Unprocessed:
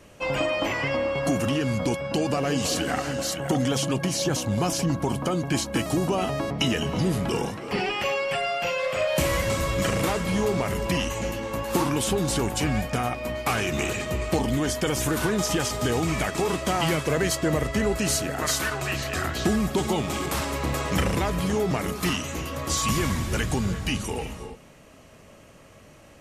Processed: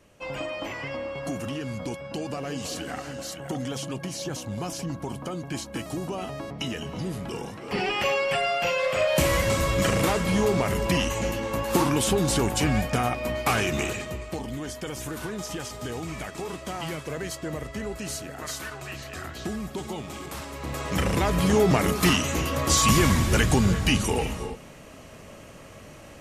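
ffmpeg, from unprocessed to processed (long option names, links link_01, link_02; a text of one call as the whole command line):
ffmpeg -i in.wav -af "volume=15.5dB,afade=type=in:start_time=7.45:duration=0.54:silence=0.354813,afade=type=out:start_time=13.59:duration=0.66:silence=0.298538,afade=type=in:start_time=20.55:duration=0.43:silence=0.446684,afade=type=in:start_time=20.98:duration=0.63:silence=0.446684" out.wav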